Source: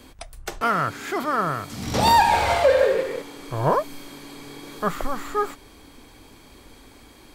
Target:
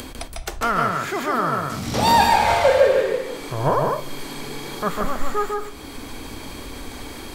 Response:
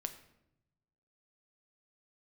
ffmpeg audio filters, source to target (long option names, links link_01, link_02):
-filter_complex "[0:a]acompressor=mode=upward:threshold=-25dB:ratio=2.5,asplit=2[link_01][link_02];[1:a]atrim=start_sample=2205,asetrate=66150,aresample=44100,adelay=149[link_03];[link_02][link_03]afir=irnorm=-1:irlink=0,volume=3dB[link_04];[link_01][link_04]amix=inputs=2:normalize=0"